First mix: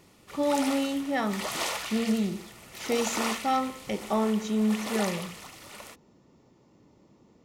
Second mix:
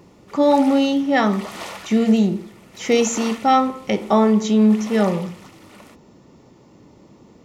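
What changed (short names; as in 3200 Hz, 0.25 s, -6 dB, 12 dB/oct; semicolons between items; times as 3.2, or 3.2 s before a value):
speech +11.0 dB; background: add high shelf 3500 Hz -7.5 dB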